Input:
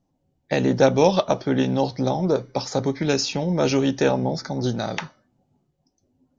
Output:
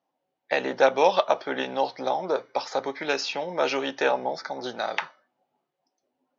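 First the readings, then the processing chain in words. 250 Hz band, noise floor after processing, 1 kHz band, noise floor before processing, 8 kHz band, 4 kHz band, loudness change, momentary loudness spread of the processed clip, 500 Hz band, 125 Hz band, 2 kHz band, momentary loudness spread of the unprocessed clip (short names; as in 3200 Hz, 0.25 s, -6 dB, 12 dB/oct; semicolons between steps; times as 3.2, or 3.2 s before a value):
-13.5 dB, -82 dBFS, +1.5 dB, -72 dBFS, n/a, -2.5 dB, -4.0 dB, 10 LU, -3.5 dB, -23.5 dB, +2.5 dB, 8 LU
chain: BPF 690–3200 Hz; gain +3 dB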